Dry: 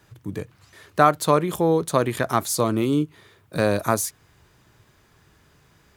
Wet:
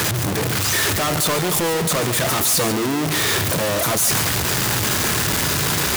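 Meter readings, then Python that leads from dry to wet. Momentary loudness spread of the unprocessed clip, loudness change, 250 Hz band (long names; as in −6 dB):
15 LU, +4.0 dB, +1.5 dB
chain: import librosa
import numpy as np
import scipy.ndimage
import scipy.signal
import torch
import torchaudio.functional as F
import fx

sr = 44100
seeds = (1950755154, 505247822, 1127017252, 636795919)

p1 = np.sign(x) * np.sqrt(np.mean(np.square(x)))
p2 = scipy.signal.sosfilt(scipy.signal.butter(2, 77.0, 'highpass', fs=sr, output='sos'), p1)
p3 = fx.high_shelf(p2, sr, hz=3600.0, db=9.0)
p4 = fx.transient(p3, sr, attack_db=-9, sustain_db=5)
p5 = fx.leveller(p4, sr, passes=3)
p6 = p5 + fx.echo_single(p5, sr, ms=141, db=-11.5, dry=0)
y = p6 * 10.0 ** (-6.5 / 20.0)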